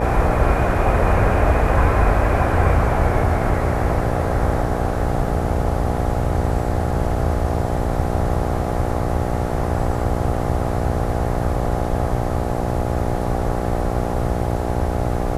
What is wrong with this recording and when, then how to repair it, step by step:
buzz 60 Hz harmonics 14 -24 dBFS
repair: de-hum 60 Hz, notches 14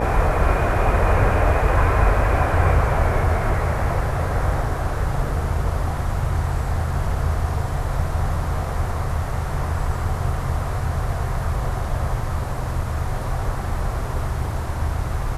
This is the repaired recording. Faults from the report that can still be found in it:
nothing left

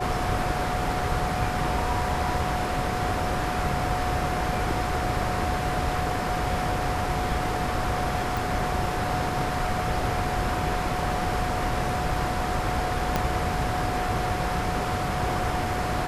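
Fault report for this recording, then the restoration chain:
whine 730 Hz -30 dBFS
8.37 s: pop
13.16 s: pop -9 dBFS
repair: de-click; band-stop 730 Hz, Q 30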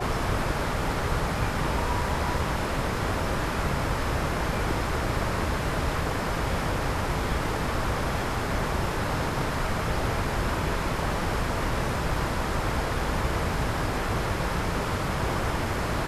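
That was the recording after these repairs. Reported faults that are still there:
13.16 s: pop

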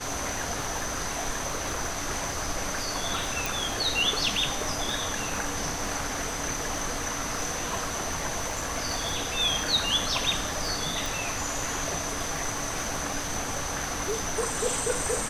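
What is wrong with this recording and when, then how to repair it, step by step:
crackle 27 per s -33 dBFS
3.46 s: pop
11.06 s: pop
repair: de-click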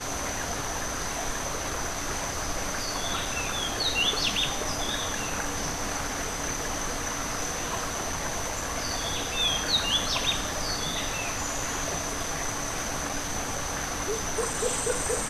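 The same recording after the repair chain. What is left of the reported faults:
11.06 s: pop

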